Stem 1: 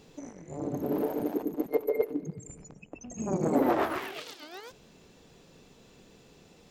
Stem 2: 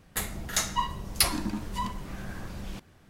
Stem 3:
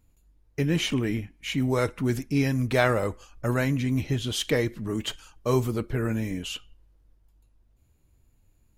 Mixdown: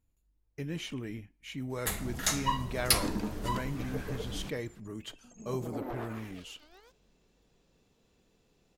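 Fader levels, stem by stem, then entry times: -14.0, -2.0, -12.5 dB; 2.20, 1.70, 0.00 s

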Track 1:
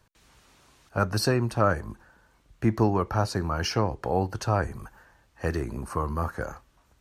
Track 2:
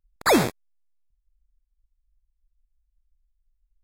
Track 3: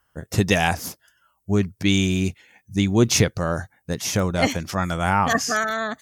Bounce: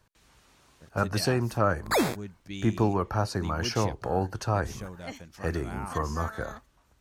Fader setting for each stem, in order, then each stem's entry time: -2.0, -6.0, -19.5 dB; 0.00, 1.65, 0.65 s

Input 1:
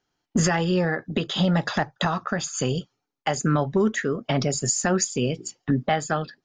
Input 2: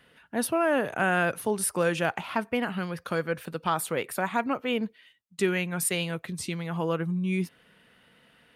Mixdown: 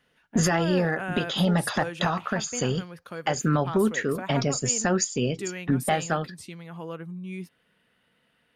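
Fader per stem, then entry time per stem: -1.5, -8.5 dB; 0.00, 0.00 s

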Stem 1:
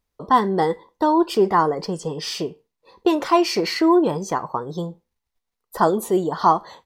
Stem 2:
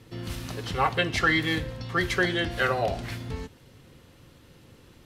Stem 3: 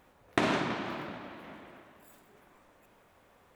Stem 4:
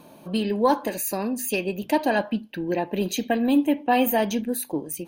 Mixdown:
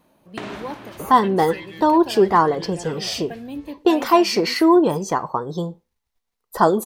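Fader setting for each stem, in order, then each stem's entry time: +2.0, -14.0, -5.0, -12.5 dB; 0.80, 0.25, 0.00, 0.00 s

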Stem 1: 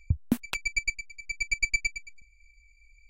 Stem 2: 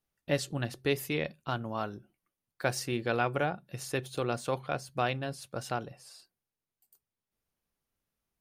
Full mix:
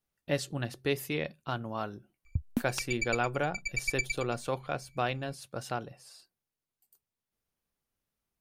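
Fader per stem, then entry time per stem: -5.5, -1.0 dB; 2.25, 0.00 s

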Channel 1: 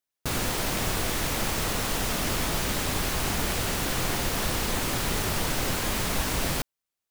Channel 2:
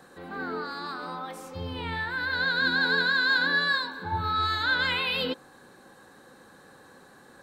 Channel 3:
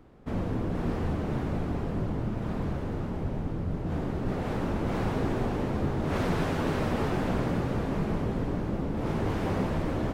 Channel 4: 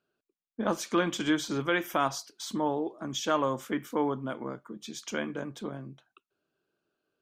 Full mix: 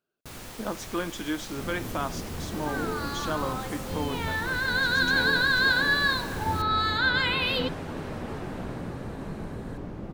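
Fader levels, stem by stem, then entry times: -14.0, +1.0, -7.0, -4.0 dB; 0.00, 2.35, 1.30, 0.00 s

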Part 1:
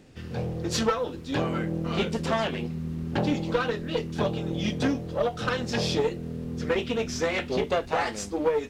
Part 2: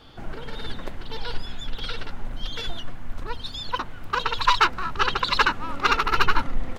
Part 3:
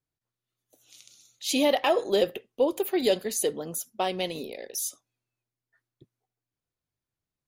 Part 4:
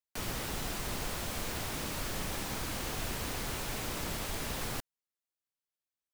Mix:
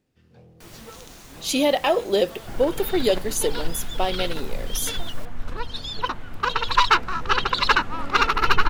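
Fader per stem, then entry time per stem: -20.0, +1.5, +3.0, -8.5 dB; 0.00, 2.30, 0.00, 0.45 s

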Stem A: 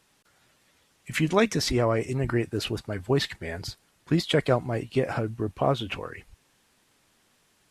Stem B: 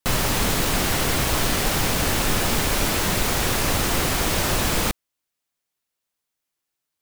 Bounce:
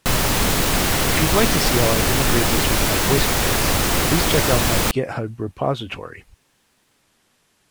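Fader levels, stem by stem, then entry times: +2.5, +3.0 dB; 0.00, 0.00 s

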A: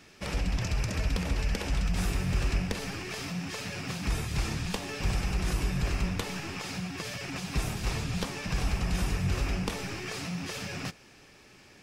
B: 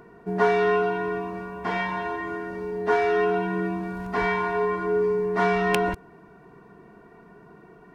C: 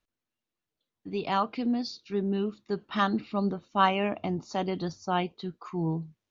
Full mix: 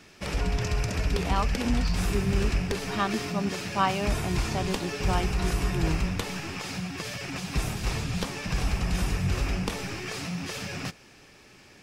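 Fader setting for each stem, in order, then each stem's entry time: +2.0, -17.5, -2.0 dB; 0.00, 0.00, 0.00 s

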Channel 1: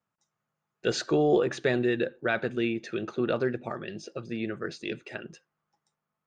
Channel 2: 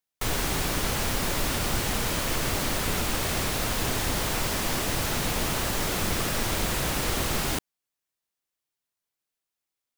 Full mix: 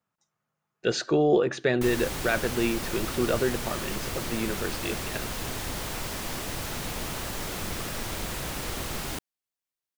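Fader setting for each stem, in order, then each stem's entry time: +1.5, -6.0 dB; 0.00, 1.60 s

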